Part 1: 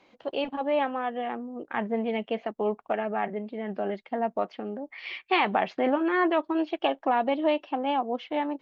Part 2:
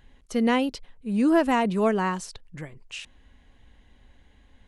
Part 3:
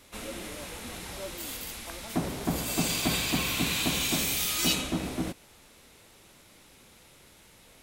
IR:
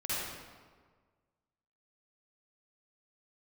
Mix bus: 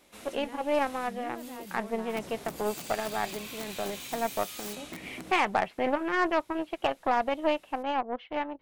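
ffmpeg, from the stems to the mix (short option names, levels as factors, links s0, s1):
-filter_complex "[0:a]lowpass=3300,asubboost=boost=10.5:cutoff=77,aeval=exprs='0.237*(cos(1*acos(clip(val(0)/0.237,-1,1)))-cos(1*PI/2))+0.0133*(cos(4*acos(clip(val(0)/0.237,-1,1)))-cos(4*PI/2))+0.0133*(cos(7*acos(clip(val(0)/0.237,-1,1)))-cos(7*PI/2))':c=same,volume=0.944[s0];[1:a]alimiter=limit=0.0841:level=0:latency=1:release=185,volume=0.188,asplit=2[s1][s2];[2:a]aeval=exprs='(mod(10*val(0)+1,2)-1)/10':c=same,volume=0.422[s3];[s2]apad=whole_len=345138[s4];[s3][s4]sidechaincompress=threshold=0.00562:ratio=8:attack=8:release=203[s5];[s1][s5]amix=inputs=2:normalize=0,highpass=f=140:p=1,acompressor=threshold=0.0112:ratio=4,volume=1[s6];[s0][s6]amix=inputs=2:normalize=0"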